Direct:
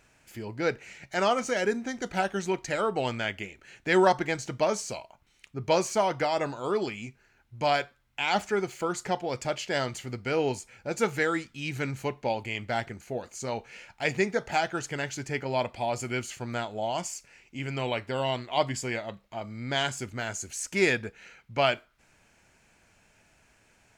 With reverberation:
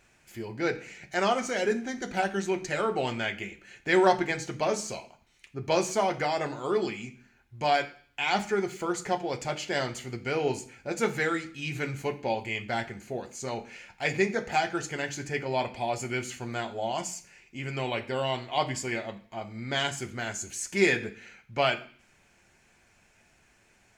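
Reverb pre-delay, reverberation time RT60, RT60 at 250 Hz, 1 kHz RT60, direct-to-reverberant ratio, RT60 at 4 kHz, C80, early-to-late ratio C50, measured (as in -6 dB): 3 ms, 0.50 s, 0.60 s, 0.50 s, 3.5 dB, 0.55 s, 18.5 dB, 15.0 dB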